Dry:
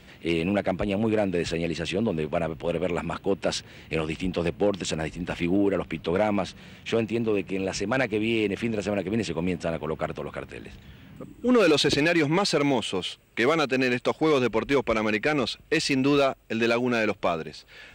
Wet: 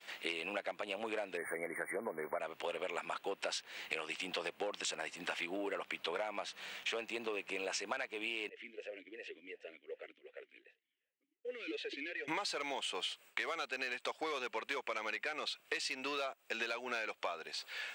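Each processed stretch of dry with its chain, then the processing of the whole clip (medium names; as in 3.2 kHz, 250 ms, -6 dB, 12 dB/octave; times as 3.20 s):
1.37–2.40 s: brick-wall FIR band-stop 2.3–8.8 kHz + treble shelf 7.8 kHz +10 dB
8.49–12.28 s: compression 1.5:1, threshold -39 dBFS + modulation noise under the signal 33 dB + talking filter e-i 2.7 Hz
whole clip: high-pass 750 Hz 12 dB/octave; expander -52 dBFS; compression 16:1, threshold -39 dBFS; trim +3.5 dB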